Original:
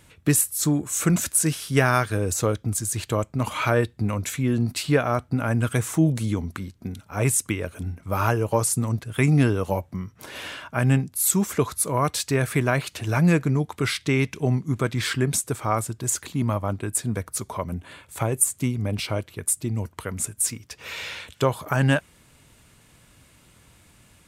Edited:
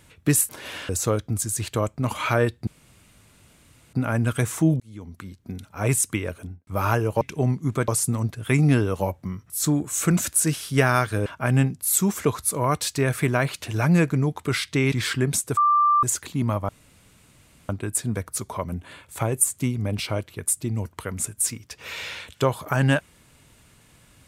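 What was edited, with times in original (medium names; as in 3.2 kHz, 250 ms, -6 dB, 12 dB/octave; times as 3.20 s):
0.49–2.25 s: swap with 10.19–10.59 s
4.03–5.29 s: room tone
6.16–7.03 s: fade in
7.67–8.03 s: studio fade out
14.25–14.92 s: move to 8.57 s
15.57–16.03 s: bleep 1.18 kHz -15 dBFS
16.69 s: insert room tone 1.00 s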